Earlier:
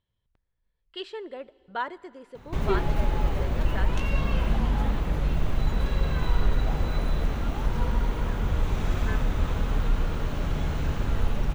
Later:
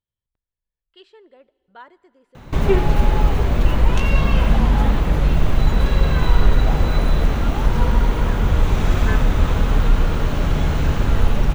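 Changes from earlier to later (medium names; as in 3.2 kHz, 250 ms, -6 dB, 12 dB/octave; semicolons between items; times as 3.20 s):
speech -11.0 dB; background +9.0 dB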